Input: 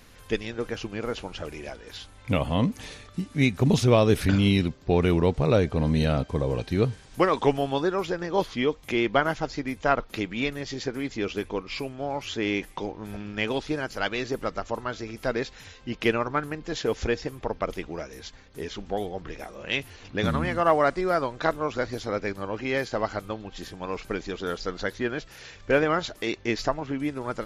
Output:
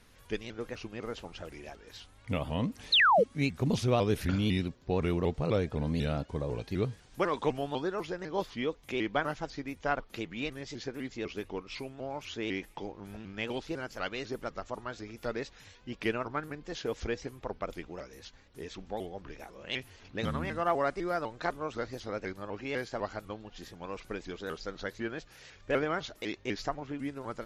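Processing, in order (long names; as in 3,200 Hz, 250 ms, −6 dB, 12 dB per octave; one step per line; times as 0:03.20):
sound drawn into the spectrogram fall, 0:02.92–0:03.24, 380–4,200 Hz −14 dBFS
pitch modulation by a square or saw wave saw up 4 Hz, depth 160 cents
level −8 dB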